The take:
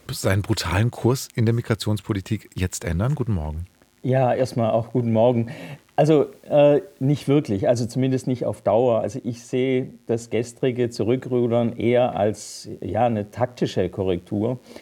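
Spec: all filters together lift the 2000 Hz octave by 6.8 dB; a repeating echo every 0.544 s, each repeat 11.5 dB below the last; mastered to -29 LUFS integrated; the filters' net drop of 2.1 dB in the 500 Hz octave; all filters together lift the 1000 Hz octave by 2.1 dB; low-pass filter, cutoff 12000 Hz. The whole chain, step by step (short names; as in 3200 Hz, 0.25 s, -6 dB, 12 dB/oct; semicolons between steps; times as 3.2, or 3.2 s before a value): LPF 12000 Hz; bell 500 Hz -4.5 dB; bell 1000 Hz +4.5 dB; bell 2000 Hz +7.5 dB; feedback echo 0.544 s, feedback 27%, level -11.5 dB; gain -6.5 dB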